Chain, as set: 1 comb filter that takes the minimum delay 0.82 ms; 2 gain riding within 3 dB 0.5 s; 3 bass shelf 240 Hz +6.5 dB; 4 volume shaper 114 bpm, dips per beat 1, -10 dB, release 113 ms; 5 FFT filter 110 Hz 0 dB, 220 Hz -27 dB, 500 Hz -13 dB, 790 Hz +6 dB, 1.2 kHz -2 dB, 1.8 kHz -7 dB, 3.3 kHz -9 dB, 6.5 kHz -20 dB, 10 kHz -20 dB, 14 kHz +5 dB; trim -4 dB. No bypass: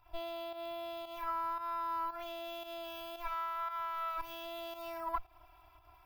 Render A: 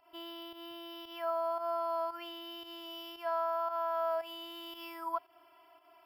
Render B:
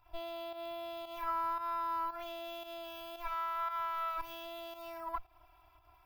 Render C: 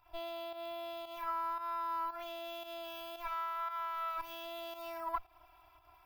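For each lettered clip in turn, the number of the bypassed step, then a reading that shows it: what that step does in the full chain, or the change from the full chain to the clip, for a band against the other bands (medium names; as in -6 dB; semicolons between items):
1, 2 kHz band -5.5 dB; 2, 1 kHz band +1.5 dB; 3, 250 Hz band -2.0 dB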